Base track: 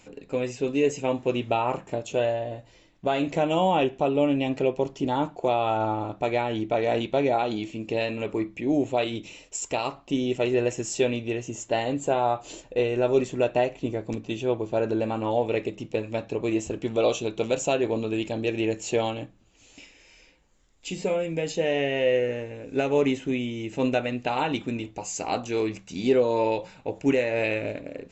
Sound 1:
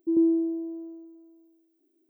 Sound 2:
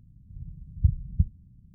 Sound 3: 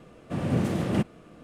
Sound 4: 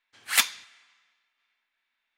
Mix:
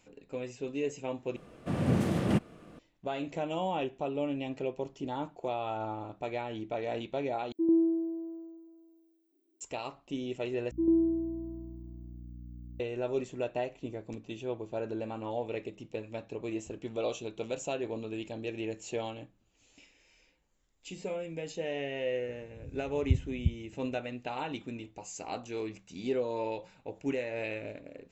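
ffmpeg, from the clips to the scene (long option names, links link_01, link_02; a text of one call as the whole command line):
ffmpeg -i bed.wav -i cue0.wav -i cue1.wav -i cue2.wav -filter_complex "[1:a]asplit=2[link_01][link_02];[0:a]volume=-10.5dB[link_03];[link_02]aeval=exprs='val(0)+0.01*(sin(2*PI*60*n/s)+sin(2*PI*2*60*n/s)/2+sin(2*PI*3*60*n/s)/3+sin(2*PI*4*60*n/s)/4+sin(2*PI*5*60*n/s)/5)':channel_layout=same[link_04];[2:a]highpass=55[link_05];[link_03]asplit=4[link_06][link_07][link_08][link_09];[link_06]atrim=end=1.364[link_10];[3:a]atrim=end=1.43,asetpts=PTS-STARTPTS,volume=-2dB[link_11];[link_07]atrim=start=2.786:end=7.524[link_12];[link_01]atrim=end=2.09,asetpts=PTS-STARTPTS,volume=-3.5dB[link_13];[link_08]atrim=start=9.606:end=10.714[link_14];[link_04]atrim=end=2.09,asetpts=PTS-STARTPTS,volume=-4dB[link_15];[link_09]atrim=start=12.796[link_16];[link_05]atrim=end=1.74,asetpts=PTS-STARTPTS,volume=-4dB,afade=type=in:duration=0.004:curve=hsin,afade=type=out:start_time=1.736:duration=0.004:curve=hsin,adelay=22260[link_17];[link_10][link_11]acrossfade=duration=0.004:curve1=hsin:curve2=hsin[link_18];[link_18][link_12]acrossfade=duration=0.004:curve1=hsin:curve2=hsin[link_19];[link_19][link_13]acrossfade=duration=0.004:curve1=hsin:curve2=hsin[link_20];[link_20][link_14]acrossfade=duration=0.004:curve1=hsin:curve2=hsin[link_21];[link_21][link_15]acrossfade=duration=0.004:curve1=hsin:curve2=hsin[link_22];[link_22][link_16]acrossfade=duration=0.004:curve1=hsin:curve2=hsin[link_23];[link_23][link_17]amix=inputs=2:normalize=0" out.wav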